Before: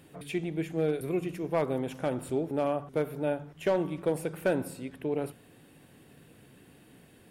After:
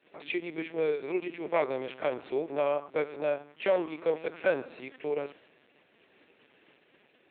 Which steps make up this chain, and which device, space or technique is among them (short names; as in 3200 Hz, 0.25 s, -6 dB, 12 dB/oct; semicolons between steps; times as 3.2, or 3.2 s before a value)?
expander -51 dBFS; talking toy (LPC vocoder at 8 kHz pitch kept; HPF 380 Hz 12 dB/oct; bell 2300 Hz +5.5 dB 0.5 oct); gain +2.5 dB